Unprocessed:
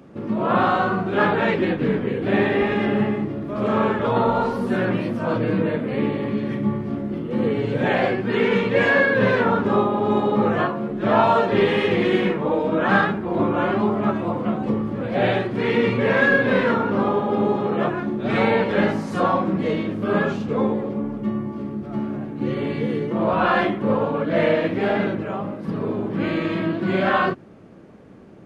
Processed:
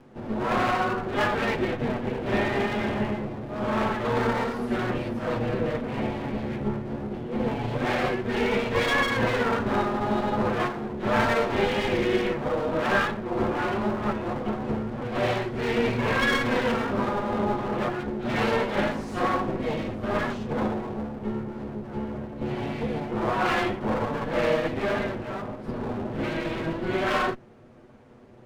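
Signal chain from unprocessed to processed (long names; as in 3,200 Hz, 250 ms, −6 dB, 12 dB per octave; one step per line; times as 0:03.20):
lower of the sound and its delayed copy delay 8.2 ms
level −4 dB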